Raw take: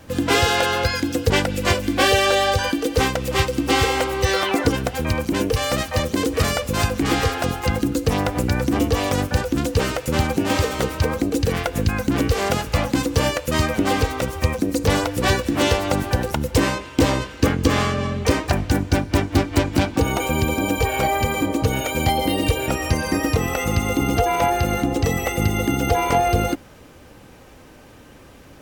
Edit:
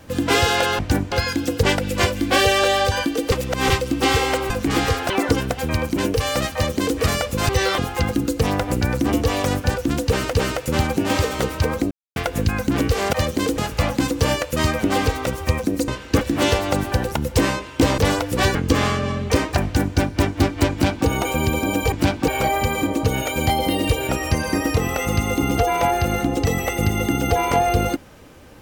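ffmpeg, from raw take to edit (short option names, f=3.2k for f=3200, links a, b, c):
-filter_complex "[0:a]asplit=20[a][b][c][d][e][f][g][h][i][j][k][l][m][n][o][p][q][r][s][t];[a]atrim=end=0.792[u];[b]atrim=start=18.588:end=18.922[v];[c]atrim=start=0.788:end=2.992[w];[d]atrim=start=2.988:end=3.372,asetpts=PTS-STARTPTS,areverse[x];[e]atrim=start=3.368:end=4.172[y];[f]atrim=start=6.848:end=7.452[z];[g]atrim=start=4.458:end=6.852[aa];[h]atrim=start=4.168:end=4.462[ab];[i]atrim=start=7.448:end=10.002[ac];[j]atrim=start=9.728:end=11.31,asetpts=PTS-STARTPTS,afade=t=out:st=1.578:d=0.004:c=hsin[ad];[k]atrim=start=11.31:end=11.56,asetpts=PTS-STARTPTS,volume=0[ae];[l]atrim=start=11.56:end=12.532,asetpts=PTS-STARTPTS,afade=t=in:d=0.004:c=hsin[af];[m]atrim=start=5.898:end=6.352[ag];[n]atrim=start=12.528:end=14.832[ah];[o]atrim=start=17.168:end=17.502[ai];[p]atrim=start=15.398:end=17.172[aj];[q]atrim=start=14.828:end=15.402[ak];[r]atrim=start=17.498:end=20.872[al];[s]atrim=start=19.658:end=20.022[am];[t]atrim=start=20.868[an];[u][v]acrossfade=d=0.004:c1=hsin:c2=hsin[ao];[ao][w]acrossfade=d=0.004:c1=hsin:c2=hsin[ap];[ap][x]acrossfade=d=0.004:c1=hsin:c2=hsin[aq];[aq][y]acrossfade=d=0.004:c1=hsin:c2=hsin[ar];[ar][z]acrossfade=d=0.004:c1=hsin:c2=hsin[as];[as][aa]acrossfade=d=0.004:c1=hsin:c2=hsin[at];[at][ab]acrossfade=d=0.004:c1=hsin:c2=hsin[au];[au][ac]acrossfade=d=0.004:c1=hsin:c2=hsin[av];[ad][ae][af]concat=n=3:v=0:a=1[aw];[av][aw]acrossfade=d=0.004:c1=hsin:c2=hsin[ax];[ax][ag]acrossfade=d=0.004:c1=hsin:c2=hsin[ay];[ay][ah]acrossfade=d=0.004:c1=hsin:c2=hsin[az];[az][ai]acrossfade=d=0.004:c1=hsin:c2=hsin[ba];[ba][aj]acrossfade=d=0.004:c1=hsin:c2=hsin[bb];[bb][ak]acrossfade=d=0.004:c1=hsin:c2=hsin[bc];[bc][al]acrossfade=d=0.004:c1=hsin:c2=hsin[bd];[bd][am]acrossfade=d=0.004:c1=hsin:c2=hsin[be];[be][an]acrossfade=d=0.004:c1=hsin:c2=hsin"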